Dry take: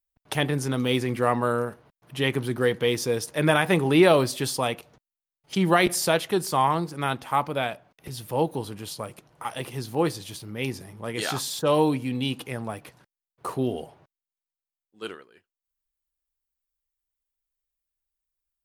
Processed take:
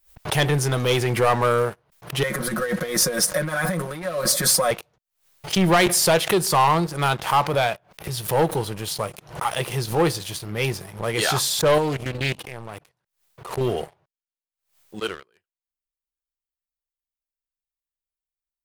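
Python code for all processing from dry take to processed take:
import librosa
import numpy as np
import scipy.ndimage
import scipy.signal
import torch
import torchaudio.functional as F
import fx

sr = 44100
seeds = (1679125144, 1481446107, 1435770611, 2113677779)

y = fx.chain(x, sr, fx.over_compress(threshold_db=-29.0, ratio=-1.0),
    fx.fixed_phaser(hz=570.0, stages=8),
    fx.comb(ms=5.5, depth=0.92), at=(2.23, 4.71))
y = fx.chain(y, sr, fx.level_steps(step_db=14),
    fx.doppler_dist(depth_ms=0.31), at=(11.78, 13.61))
y = fx.leveller(y, sr, passes=3)
y = fx.peak_eq(y, sr, hz=260.0, db=-14.5, octaves=0.35)
y = fx.pre_swell(y, sr, db_per_s=140.0)
y = y * librosa.db_to_amplitude(-3.0)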